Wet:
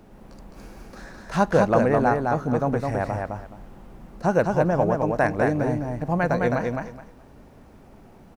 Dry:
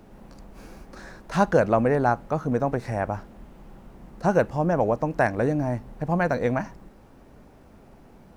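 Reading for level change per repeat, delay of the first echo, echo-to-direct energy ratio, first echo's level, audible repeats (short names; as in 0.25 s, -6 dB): -14.0 dB, 0.211 s, -3.5 dB, -3.5 dB, 3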